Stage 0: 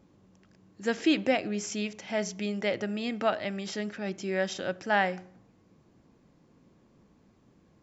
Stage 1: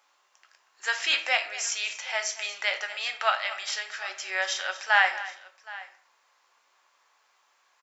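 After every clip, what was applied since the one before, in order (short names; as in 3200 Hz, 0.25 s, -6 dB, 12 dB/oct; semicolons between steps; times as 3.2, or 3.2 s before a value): HPF 930 Hz 24 dB/oct; tapped delay 0.236/0.77 s -16/-19.5 dB; shoebox room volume 45 m³, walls mixed, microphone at 0.34 m; gain +7.5 dB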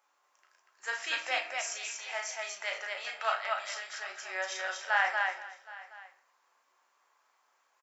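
bell 3700 Hz -7 dB 1.7 oct; on a send: loudspeakers at several distances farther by 12 m -5 dB, 82 m -3 dB; on the sum: gain -5.5 dB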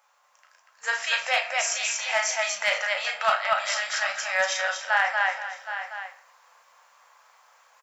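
vocal rider within 5 dB 0.5 s; hard clip -21 dBFS, distortion -29 dB; FFT band-reject 230–460 Hz; gain +9 dB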